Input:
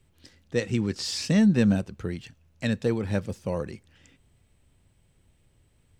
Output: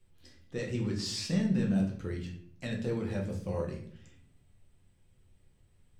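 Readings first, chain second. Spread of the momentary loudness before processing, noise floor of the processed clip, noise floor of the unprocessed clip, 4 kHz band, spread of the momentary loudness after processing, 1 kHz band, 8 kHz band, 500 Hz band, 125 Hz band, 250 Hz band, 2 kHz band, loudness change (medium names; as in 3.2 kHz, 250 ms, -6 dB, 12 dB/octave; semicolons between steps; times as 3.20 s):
14 LU, -66 dBFS, -65 dBFS, -5.5 dB, 14 LU, -6.5 dB, -6.0 dB, -7.0 dB, -5.0 dB, -7.0 dB, -8.5 dB, -7.0 dB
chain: peak limiter -18 dBFS, peak gain reduction 7.5 dB; simulated room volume 82 m³, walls mixed, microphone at 0.91 m; trim -8.5 dB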